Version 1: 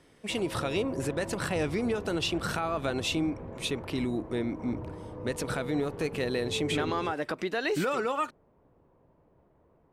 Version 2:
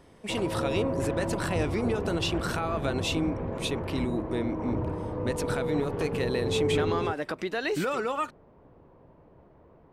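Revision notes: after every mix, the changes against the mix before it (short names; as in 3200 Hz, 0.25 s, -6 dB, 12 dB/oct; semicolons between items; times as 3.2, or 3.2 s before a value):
background +8.5 dB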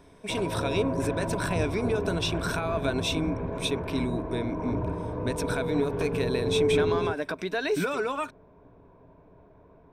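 master: add ripple EQ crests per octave 1.6, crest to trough 8 dB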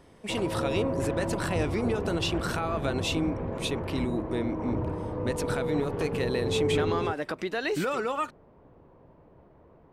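master: remove ripple EQ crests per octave 1.6, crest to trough 8 dB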